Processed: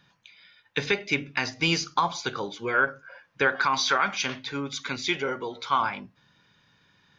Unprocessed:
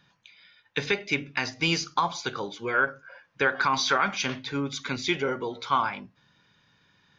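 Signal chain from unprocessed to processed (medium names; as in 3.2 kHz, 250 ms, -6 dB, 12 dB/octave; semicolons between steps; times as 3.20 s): 3.56–5.81 s: bass shelf 440 Hz -5.5 dB; trim +1 dB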